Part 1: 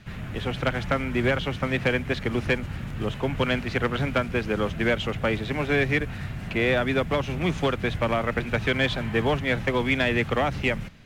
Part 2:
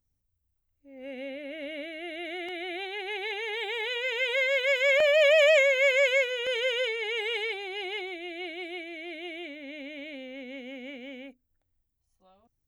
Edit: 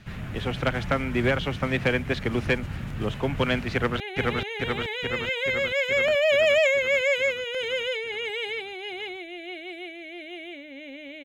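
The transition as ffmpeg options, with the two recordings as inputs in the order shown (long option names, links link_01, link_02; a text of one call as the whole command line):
ffmpeg -i cue0.wav -i cue1.wav -filter_complex "[0:a]apad=whole_dur=11.24,atrim=end=11.24,atrim=end=4.002[link_01];[1:a]atrim=start=2.918:end=10.16[link_02];[link_01][link_02]acrossfade=duration=0.004:curve1=hsin:curve2=hsin,asplit=2[link_03][link_04];[link_04]afade=type=in:start_time=3.73:duration=0.01,afade=type=out:start_time=4:duration=0.01,aecho=0:1:430|860|1290|1720|2150|2580|3010|3440|3870|4300|4730|5160:0.891251|0.623876|0.436713|0.305699|0.213989|0.149793|0.104855|0.0733983|0.0513788|0.0359652|0.0251756|0.0176229[link_05];[link_03][link_05]amix=inputs=2:normalize=0" out.wav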